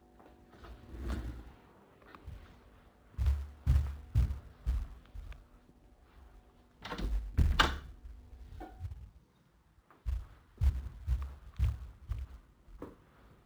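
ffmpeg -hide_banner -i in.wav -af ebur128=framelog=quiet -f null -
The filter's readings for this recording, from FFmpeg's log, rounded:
Integrated loudness:
  I:         -36.7 LUFS
  Threshold: -49.6 LUFS
Loudness range:
  LRA:         5.4 LU
  Threshold: -58.9 LUFS
  LRA low:   -42.7 LUFS
  LRA high:  -37.2 LUFS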